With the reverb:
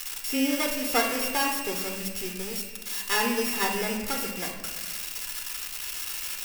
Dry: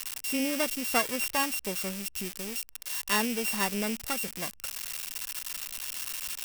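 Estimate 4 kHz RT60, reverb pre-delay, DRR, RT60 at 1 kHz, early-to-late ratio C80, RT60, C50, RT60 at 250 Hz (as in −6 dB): 0.95 s, 3 ms, 1.5 dB, 1.3 s, 7.0 dB, 1.4 s, 5.5 dB, 1.8 s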